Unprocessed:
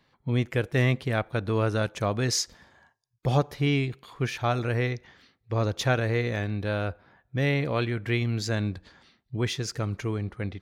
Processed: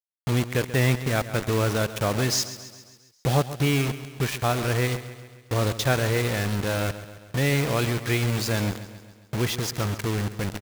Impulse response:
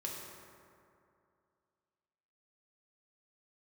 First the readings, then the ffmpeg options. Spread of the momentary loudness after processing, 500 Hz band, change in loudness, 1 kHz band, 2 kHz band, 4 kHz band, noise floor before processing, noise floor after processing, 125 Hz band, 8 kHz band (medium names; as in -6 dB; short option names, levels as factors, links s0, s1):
9 LU, +2.0 dB, +2.5 dB, +3.0 dB, +3.0 dB, +4.5 dB, -73 dBFS, -56 dBFS, +2.0 dB, +5.5 dB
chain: -filter_complex "[0:a]asplit=2[s0][s1];[s1]acompressor=threshold=0.0141:ratio=8,volume=1[s2];[s0][s2]amix=inputs=2:normalize=0,acrusher=bits=4:mix=0:aa=0.000001,aecho=1:1:135|270|405|540|675|810:0.2|0.114|0.0648|0.037|0.0211|0.012"